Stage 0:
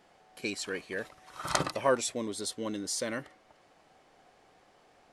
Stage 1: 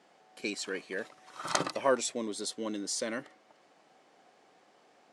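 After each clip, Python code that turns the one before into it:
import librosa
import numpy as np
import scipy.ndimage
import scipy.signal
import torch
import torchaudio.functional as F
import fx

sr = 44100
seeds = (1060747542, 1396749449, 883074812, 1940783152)

y = scipy.signal.sosfilt(scipy.signal.cheby1(2, 1.0, [220.0, 8200.0], 'bandpass', fs=sr, output='sos'), x)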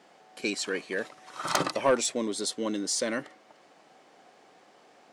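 y = 10.0 ** (-20.0 / 20.0) * np.tanh(x / 10.0 ** (-20.0 / 20.0))
y = F.gain(torch.from_numpy(y), 5.5).numpy()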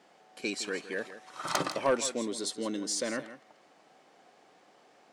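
y = x + 10.0 ** (-13.5 / 20.0) * np.pad(x, (int(163 * sr / 1000.0), 0))[:len(x)]
y = F.gain(torch.from_numpy(y), -3.5).numpy()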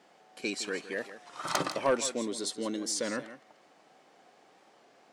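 y = fx.record_warp(x, sr, rpm=33.33, depth_cents=100.0)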